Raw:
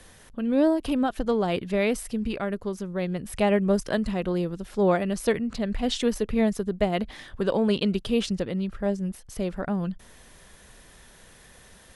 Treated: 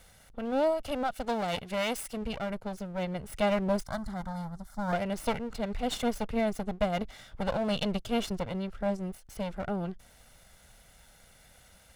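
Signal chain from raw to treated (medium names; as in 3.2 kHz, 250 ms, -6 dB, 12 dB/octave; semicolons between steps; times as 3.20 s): comb filter that takes the minimum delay 1.4 ms; 1.14–2.17 s: tilt EQ +1.5 dB/octave; 3.86–4.93 s: static phaser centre 1.1 kHz, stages 4; trim -4.5 dB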